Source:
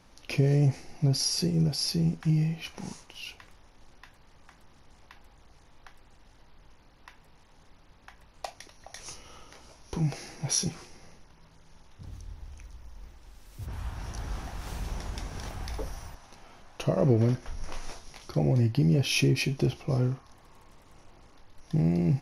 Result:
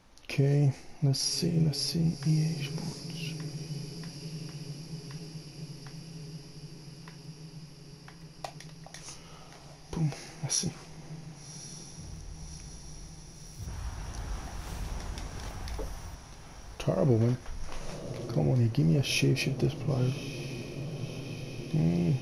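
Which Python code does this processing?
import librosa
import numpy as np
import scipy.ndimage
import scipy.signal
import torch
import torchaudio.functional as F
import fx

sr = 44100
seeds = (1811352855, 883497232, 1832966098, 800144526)

y = fx.echo_diffused(x, sr, ms=1146, feedback_pct=75, wet_db=-12.0)
y = y * librosa.db_to_amplitude(-2.0)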